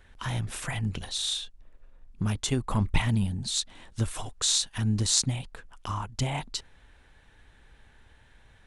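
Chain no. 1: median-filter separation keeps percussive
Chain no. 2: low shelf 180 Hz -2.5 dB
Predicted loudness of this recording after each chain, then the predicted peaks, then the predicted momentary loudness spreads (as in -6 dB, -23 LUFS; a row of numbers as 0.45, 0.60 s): -32.0, -29.5 LUFS; -3.5, -3.5 dBFS; 15, 13 LU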